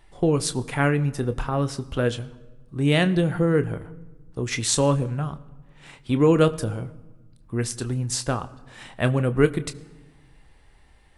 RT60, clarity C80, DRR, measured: 1.3 s, 20.0 dB, 11.0 dB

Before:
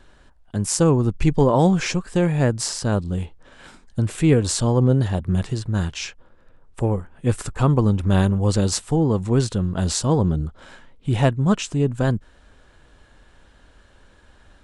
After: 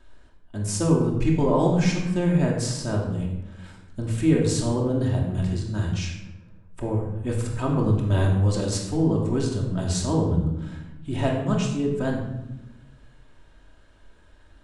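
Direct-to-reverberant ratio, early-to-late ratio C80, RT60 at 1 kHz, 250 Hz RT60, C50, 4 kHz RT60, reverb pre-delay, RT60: −2.0 dB, 6.5 dB, 0.85 s, 1.5 s, 4.0 dB, 0.60 s, 3 ms, 0.95 s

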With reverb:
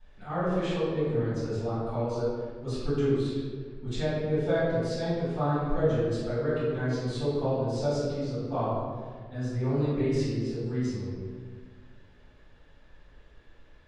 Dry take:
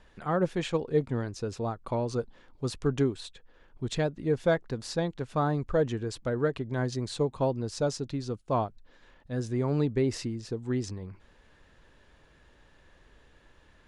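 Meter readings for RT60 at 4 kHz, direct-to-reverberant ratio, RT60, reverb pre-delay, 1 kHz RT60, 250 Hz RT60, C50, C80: 1.1 s, −15.5 dB, 1.7 s, 3 ms, 1.5 s, 1.9 s, −3.0 dB, −0.5 dB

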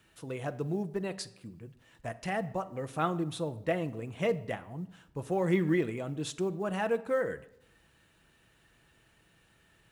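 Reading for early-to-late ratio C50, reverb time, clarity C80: 17.0 dB, 0.80 s, 20.0 dB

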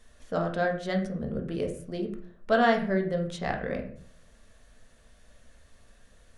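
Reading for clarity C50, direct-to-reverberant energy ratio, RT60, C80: 9.0 dB, 2.0 dB, 0.50 s, 13.0 dB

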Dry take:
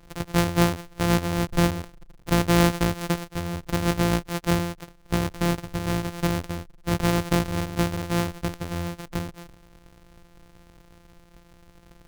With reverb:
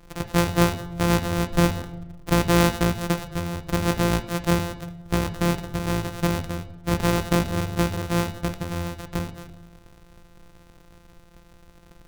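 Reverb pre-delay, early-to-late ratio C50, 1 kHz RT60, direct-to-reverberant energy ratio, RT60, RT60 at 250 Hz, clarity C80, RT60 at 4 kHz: 6 ms, 12.5 dB, 0.95 s, 8.5 dB, 1.0 s, 1.2 s, 15.0 dB, 0.70 s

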